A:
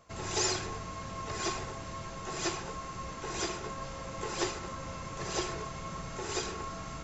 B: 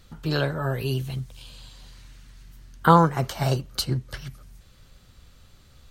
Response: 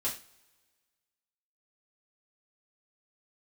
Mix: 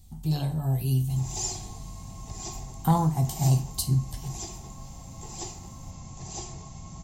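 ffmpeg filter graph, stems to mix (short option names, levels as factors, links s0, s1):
-filter_complex "[0:a]adelay=1000,volume=1.12,asplit=2[s0][s1];[s1]volume=0.237[s2];[1:a]volume=0.841,asplit=2[s3][s4];[s4]volume=0.501[s5];[2:a]atrim=start_sample=2205[s6];[s2][s5]amix=inputs=2:normalize=0[s7];[s7][s6]afir=irnorm=-1:irlink=0[s8];[s0][s3][s8]amix=inputs=3:normalize=0,firequalizer=gain_entry='entry(160,0);entry(520,-20);entry(750,-2);entry(1400,-27);entry(2000,-16);entry(7900,3)':delay=0.05:min_phase=1,asoftclip=type=tanh:threshold=0.376"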